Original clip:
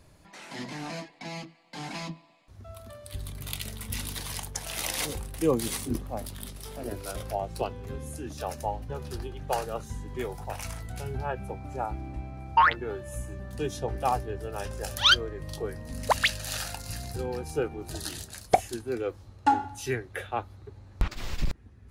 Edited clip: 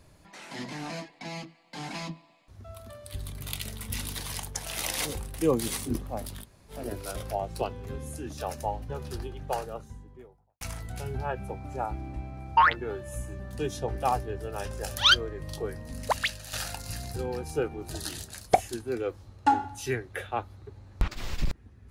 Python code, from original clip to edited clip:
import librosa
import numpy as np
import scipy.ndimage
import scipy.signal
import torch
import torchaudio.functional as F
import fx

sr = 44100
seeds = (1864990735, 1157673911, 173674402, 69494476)

y = fx.studio_fade_out(x, sr, start_s=9.13, length_s=1.48)
y = fx.edit(y, sr, fx.room_tone_fill(start_s=6.43, length_s=0.28, crossfade_s=0.06),
    fx.fade_out_to(start_s=15.73, length_s=0.8, floor_db=-8.5), tone=tone)